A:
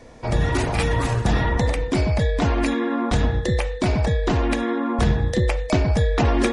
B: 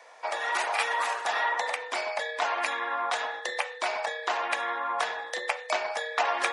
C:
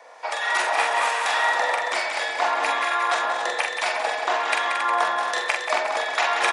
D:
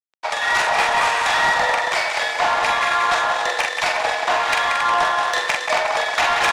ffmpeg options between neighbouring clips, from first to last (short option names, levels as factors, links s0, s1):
-filter_complex "[0:a]highpass=f=710:w=0.5412,highpass=f=710:w=1.3066,acrossover=split=2900[s0][s1];[s0]acontrast=30[s2];[s2][s1]amix=inputs=2:normalize=0,volume=0.631"
-filter_complex "[0:a]asplit=2[s0][s1];[s1]aecho=0:1:181|362|543|724|905:0.447|0.205|0.0945|0.0435|0.02[s2];[s0][s2]amix=inputs=2:normalize=0,acrossover=split=1300[s3][s4];[s3]aeval=exprs='val(0)*(1-0.5/2+0.5/2*cos(2*PI*1.2*n/s))':c=same[s5];[s4]aeval=exprs='val(0)*(1-0.5/2-0.5/2*cos(2*PI*1.2*n/s))':c=same[s6];[s5][s6]amix=inputs=2:normalize=0,asplit=2[s7][s8];[s8]aecho=0:1:44|225|273|359:0.596|0.126|0.398|0.251[s9];[s7][s9]amix=inputs=2:normalize=0,volume=2"
-af "aeval=exprs='sgn(val(0))*max(abs(val(0))-0.0168,0)':c=same,highpass=450,lowpass=7700,asoftclip=type=tanh:threshold=0.1,volume=2.66"